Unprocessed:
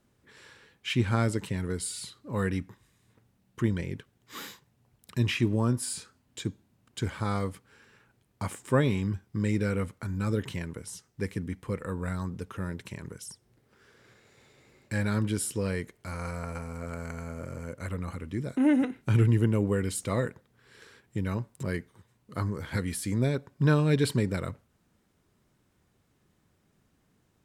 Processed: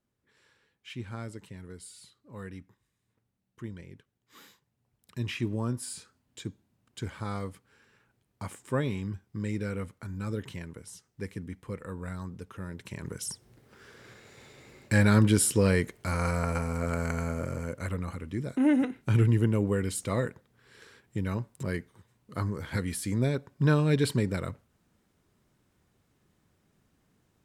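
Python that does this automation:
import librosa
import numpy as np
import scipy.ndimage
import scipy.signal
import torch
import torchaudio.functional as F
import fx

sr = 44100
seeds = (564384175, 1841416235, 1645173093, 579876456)

y = fx.gain(x, sr, db=fx.line((4.45, -13.0), (5.45, -5.0), (12.69, -5.0), (13.26, 7.0), (17.24, 7.0), (18.15, -0.5)))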